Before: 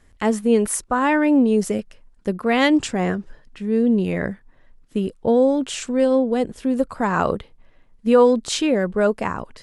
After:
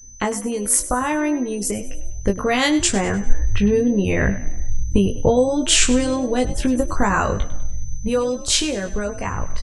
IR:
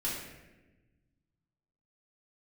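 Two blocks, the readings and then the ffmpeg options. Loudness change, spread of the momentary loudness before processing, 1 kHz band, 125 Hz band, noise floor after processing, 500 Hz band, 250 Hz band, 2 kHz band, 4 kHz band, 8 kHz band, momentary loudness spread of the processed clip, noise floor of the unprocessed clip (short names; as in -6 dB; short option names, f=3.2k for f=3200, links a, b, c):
0.0 dB, 12 LU, -0.5 dB, +5.5 dB, -30 dBFS, -2.5 dB, -1.5 dB, +2.0 dB, +7.5 dB, +10.5 dB, 11 LU, -53 dBFS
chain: -filter_complex "[0:a]acrossover=split=5000[a][b];[a]acompressor=threshold=-27dB:ratio=6[c];[c][b]amix=inputs=2:normalize=0,afftdn=nr=27:nf=-52,asubboost=boost=8.5:cutoff=76,dynaudnorm=f=220:g=21:m=8dB,asplit=5[d][e][f][g][h];[e]adelay=100,afreqshift=43,volume=-15dB[i];[f]adelay=200,afreqshift=86,volume=-22.5dB[j];[g]adelay=300,afreqshift=129,volume=-30.1dB[k];[h]adelay=400,afreqshift=172,volume=-37.6dB[l];[d][i][j][k][l]amix=inputs=5:normalize=0,adynamicequalizer=threshold=0.0126:dfrequency=580:dqfactor=0.71:tfrequency=580:tqfactor=0.71:attack=5:release=100:ratio=0.375:range=2:mode=cutabove:tftype=bell,asplit=2[m][n];[n]adelay=20,volume=-4.5dB[o];[m][o]amix=inputs=2:normalize=0,aeval=exprs='val(0)+0.00398*sin(2*PI*6100*n/s)':c=same,volume=6.5dB"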